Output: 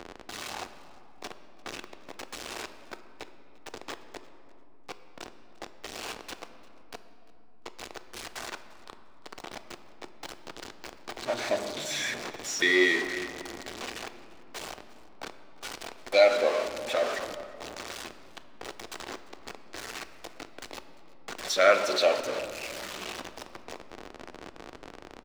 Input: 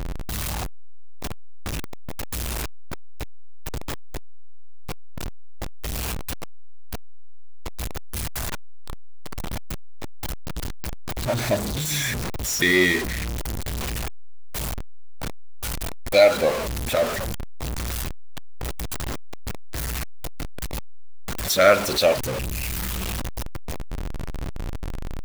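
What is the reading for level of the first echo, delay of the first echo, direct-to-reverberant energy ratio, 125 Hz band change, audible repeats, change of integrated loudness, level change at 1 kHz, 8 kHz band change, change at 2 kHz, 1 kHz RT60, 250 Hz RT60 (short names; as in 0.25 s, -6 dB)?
-22.0 dB, 0.347 s, 9.0 dB, -23.5 dB, 1, -4.0 dB, -4.0 dB, -9.0 dB, -3.5 dB, 2.7 s, 4.8 s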